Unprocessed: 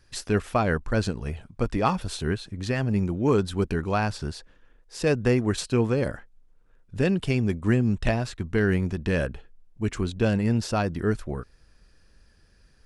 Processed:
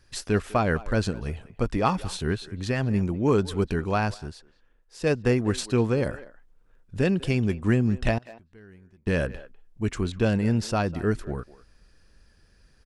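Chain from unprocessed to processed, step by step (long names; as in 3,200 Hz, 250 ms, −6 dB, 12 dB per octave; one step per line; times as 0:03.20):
0:08.18–0:09.07: gate with flip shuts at −28 dBFS, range −27 dB
far-end echo of a speakerphone 200 ms, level −17 dB
0:04.14–0:05.40: expander for the loud parts 1.5 to 1, over −32 dBFS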